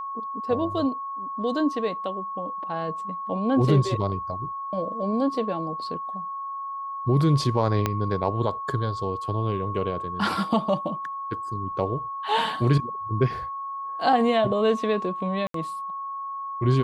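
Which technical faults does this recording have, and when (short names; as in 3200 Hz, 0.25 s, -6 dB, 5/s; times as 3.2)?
tone 1100 Hz -30 dBFS
7.86 pop -9 dBFS
15.47–15.54 gap 73 ms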